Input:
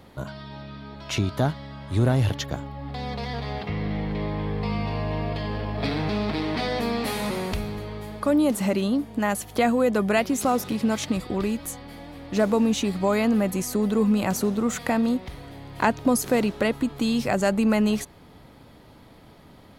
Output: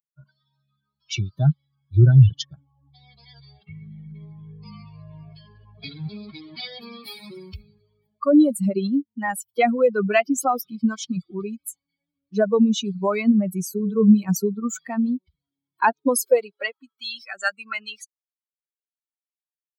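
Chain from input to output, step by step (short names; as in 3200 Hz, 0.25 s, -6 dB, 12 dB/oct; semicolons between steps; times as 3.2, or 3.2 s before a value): per-bin expansion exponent 3; high-pass sweep 130 Hz -> 1400 Hz, 15.16–17.07; 13.78–14.29 notches 60/120/180/240/300/360/420 Hz; gain +7.5 dB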